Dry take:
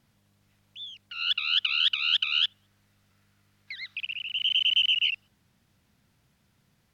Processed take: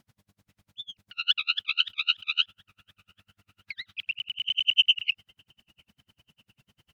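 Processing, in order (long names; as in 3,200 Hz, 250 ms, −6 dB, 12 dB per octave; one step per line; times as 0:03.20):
on a send: delay with a low-pass on its return 741 ms, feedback 59%, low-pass 870 Hz, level −17 dB
on the sum: tremolo with a sine in dB 10 Hz, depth 40 dB
level +7 dB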